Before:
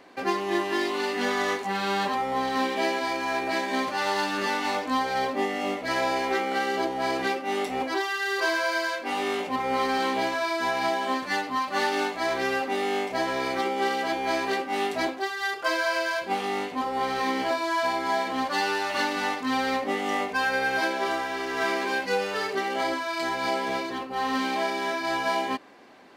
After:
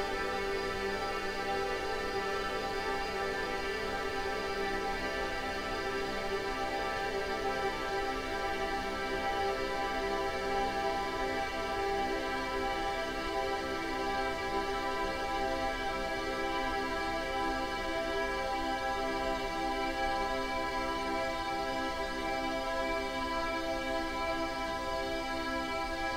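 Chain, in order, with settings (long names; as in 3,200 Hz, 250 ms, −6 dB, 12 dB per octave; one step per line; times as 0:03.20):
background noise brown −38 dBFS
extreme stretch with random phases 49×, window 1.00 s, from 0:22.46
level −6.5 dB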